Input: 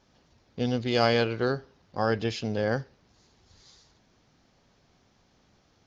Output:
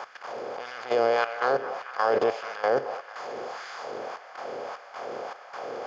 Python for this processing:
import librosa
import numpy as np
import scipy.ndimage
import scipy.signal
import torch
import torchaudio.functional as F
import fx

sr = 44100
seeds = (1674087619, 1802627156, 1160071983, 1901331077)

p1 = fx.bin_compress(x, sr, power=0.4)
p2 = fx.filter_lfo_highpass(p1, sr, shape='sine', hz=1.7, low_hz=410.0, high_hz=1600.0, q=1.7)
p3 = fx.level_steps(p2, sr, step_db=13)
p4 = fx.graphic_eq(p3, sr, hz=(125, 500, 1000, 4000), db=(11, 4, 3, -9))
y = p4 + fx.echo_stepped(p4, sr, ms=221, hz=860.0, octaves=0.7, feedback_pct=70, wet_db=-10, dry=0)